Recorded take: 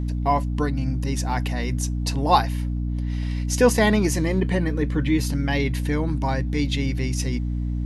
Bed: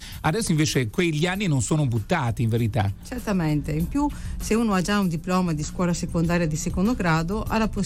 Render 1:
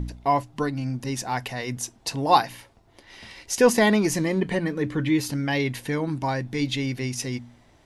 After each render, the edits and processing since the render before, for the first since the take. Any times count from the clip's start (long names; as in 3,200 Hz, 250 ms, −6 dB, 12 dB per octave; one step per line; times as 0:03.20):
hum removal 60 Hz, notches 5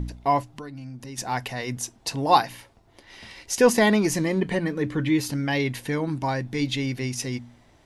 0:00.48–0:01.18: downward compressor 3 to 1, threshold −38 dBFS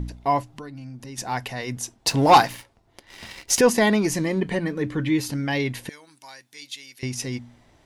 0:01.94–0:03.61: leveller curve on the samples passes 2
0:05.89–0:07.03: first difference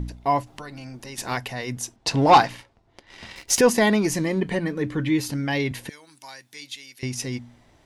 0:00.46–0:01.36: ceiling on every frequency bin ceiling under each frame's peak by 14 dB
0:01.96–0:03.36: high-frequency loss of the air 62 metres
0:05.71–0:06.76: multiband upward and downward compressor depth 40%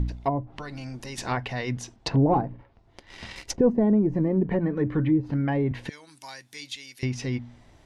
treble cut that deepens with the level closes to 430 Hz, closed at −18.5 dBFS
low-shelf EQ 110 Hz +6.5 dB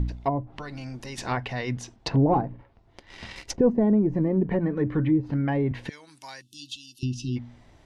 0:06.41–0:07.37: time-frequency box erased 370–2,600 Hz
high-shelf EQ 8,900 Hz −6 dB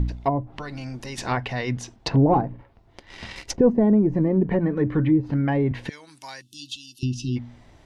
level +3 dB